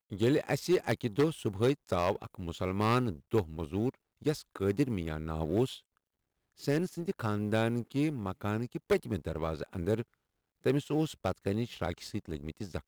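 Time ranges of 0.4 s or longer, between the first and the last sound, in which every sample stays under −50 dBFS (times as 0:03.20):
0:05.80–0:06.58
0:10.03–0:10.64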